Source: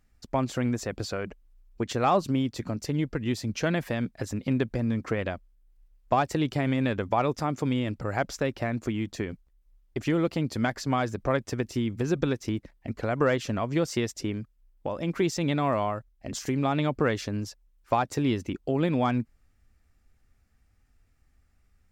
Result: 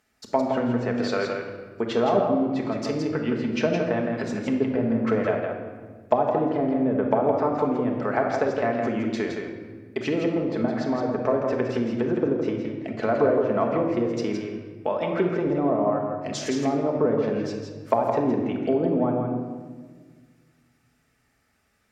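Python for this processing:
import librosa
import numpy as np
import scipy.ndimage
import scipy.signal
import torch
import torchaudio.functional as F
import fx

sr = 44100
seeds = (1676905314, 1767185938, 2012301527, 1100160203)

y = scipy.signal.sosfilt(scipy.signal.butter(2, 78.0, 'highpass', fs=sr, output='sos'), x)
y = fx.env_lowpass_down(y, sr, base_hz=530.0, full_db=-22.0)
y = fx.bass_treble(y, sr, bass_db=-14, treble_db=-1)
y = y + 10.0 ** (-5.5 / 20.0) * np.pad(y, (int(165 * sr / 1000.0), 0))[:len(y)]
y = fx.room_shoebox(y, sr, seeds[0], volume_m3=1600.0, walls='mixed', distance_m=1.5)
y = F.gain(torch.from_numpy(y), 6.0).numpy()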